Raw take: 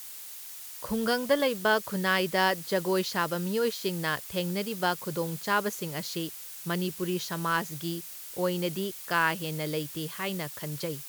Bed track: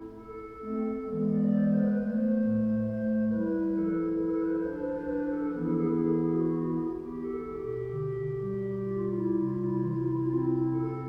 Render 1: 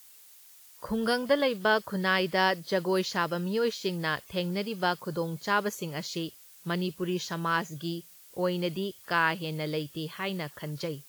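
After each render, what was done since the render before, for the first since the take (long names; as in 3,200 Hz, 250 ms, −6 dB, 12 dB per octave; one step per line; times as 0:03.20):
noise reduction from a noise print 11 dB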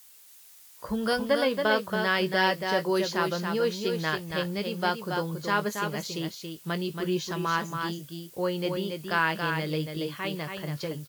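double-tracking delay 19 ms −11.5 dB
single-tap delay 278 ms −5.5 dB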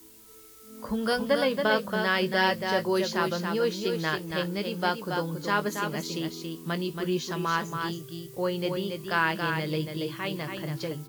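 mix in bed track −15 dB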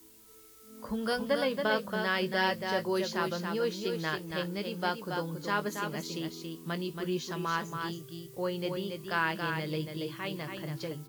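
level −4.5 dB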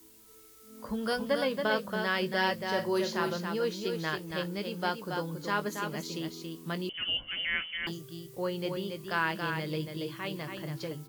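0:02.69–0:03.38: flutter between parallel walls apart 7.8 metres, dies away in 0.24 s
0:06.89–0:07.87: voice inversion scrambler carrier 3,200 Hz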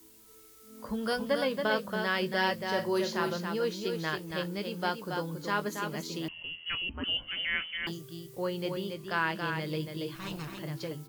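0:06.28–0:07.04: voice inversion scrambler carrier 3,100 Hz
0:08.93–0:09.61: high-shelf EQ 7,800 Hz → 11,000 Hz −5.5 dB
0:10.15–0:10.59: lower of the sound and its delayed copy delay 0.74 ms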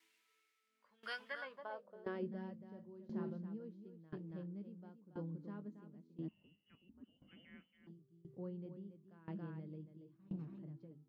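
band-pass filter sweep 2,200 Hz → 210 Hz, 0:01.23–0:02.34
tremolo with a ramp in dB decaying 0.97 Hz, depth 20 dB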